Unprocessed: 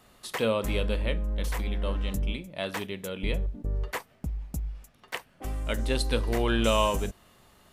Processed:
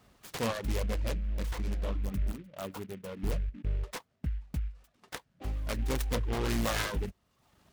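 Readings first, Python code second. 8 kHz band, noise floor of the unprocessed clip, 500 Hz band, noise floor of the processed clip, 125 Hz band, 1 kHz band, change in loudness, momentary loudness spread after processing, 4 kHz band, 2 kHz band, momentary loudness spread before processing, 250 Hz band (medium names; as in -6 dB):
-2.5 dB, -61 dBFS, -8.0 dB, -74 dBFS, -2.5 dB, -7.0 dB, -4.5 dB, 11 LU, -7.5 dB, -5.5 dB, 12 LU, -5.0 dB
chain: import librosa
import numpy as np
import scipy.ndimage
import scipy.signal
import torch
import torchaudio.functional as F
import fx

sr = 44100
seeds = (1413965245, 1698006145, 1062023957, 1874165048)

y = fx.self_delay(x, sr, depth_ms=0.96)
y = fx.spec_box(y, sr, start_s=1.85, length_s=1.46, low_hz=1500.0, high_hz=7100.0, gain_db=-28)
y = fx.dereverb_blind(y, sr, rt60_s=0.78)
y = scipy.signal.sosfilt(scipy.signal.butter(2, 44.0, 'highpass', fs=sr, output='sos'), y)
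y = fx.low_shelf(y, sr, hz=200.0, db=7.0)
y = fx.noise_mod_delay(y, sr, seeds[0], noise_hz=1900.0, depth_ms=0.063)
y = y * 10.0 ** (-5.0 / 20.0)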